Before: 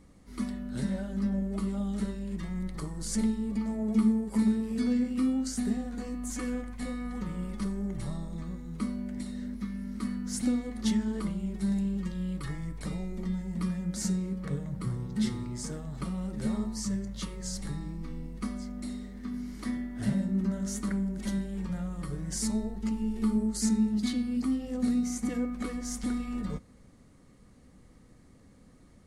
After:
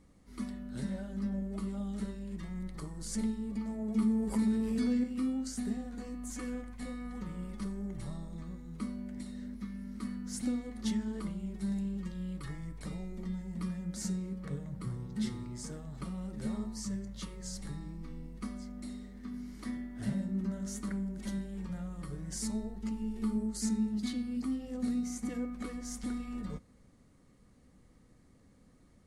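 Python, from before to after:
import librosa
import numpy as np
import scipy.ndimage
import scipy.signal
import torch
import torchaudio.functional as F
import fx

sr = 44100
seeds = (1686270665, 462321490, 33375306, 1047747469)

y = fx.env_flatten(x, sr, amount_pct=50, at=(3.99, 5.04))
y = y * librosa.db_to_amplitude(-5.5)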